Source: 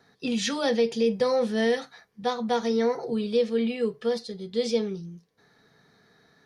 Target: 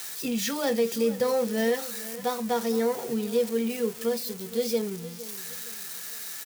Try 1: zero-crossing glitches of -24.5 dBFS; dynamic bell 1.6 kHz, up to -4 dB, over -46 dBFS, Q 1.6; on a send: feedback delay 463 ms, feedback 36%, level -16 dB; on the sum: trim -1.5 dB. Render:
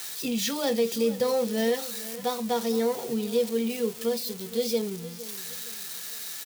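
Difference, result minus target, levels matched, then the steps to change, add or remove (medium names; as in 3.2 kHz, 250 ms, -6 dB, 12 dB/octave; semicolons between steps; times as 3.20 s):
4 kHz band +2.5 dB
change: dynamic bell 3.7 kHz, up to -4 dB, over -46 dBFS, Q 1.6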